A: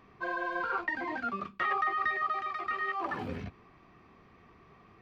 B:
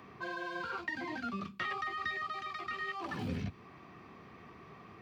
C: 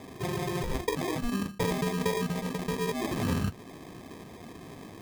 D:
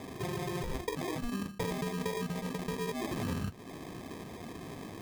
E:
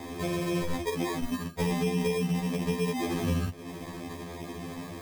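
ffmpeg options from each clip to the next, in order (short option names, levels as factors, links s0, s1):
-filter_complex "[0:a]highpass=93,acrossover=split=230|3000[s0][s1][s2];[s1]acompressor=threshold=0.00126:ratio=2[s3];[s0][s3][s2]amix=inputs=3:normalize=0,volume=2"
-af "acrusher=samples=31:mix=1:aa=0.000001,volume=2.66"
-af "acompressor=threshold=0.0112:ratio=2,volume=1.19"
-af "afftfilt=real='re*2*eq(mod(b,4),0)':imag='im*2*eq(mod(b,4),0)':win_size=2048:overlap=0.75,volume=2.24"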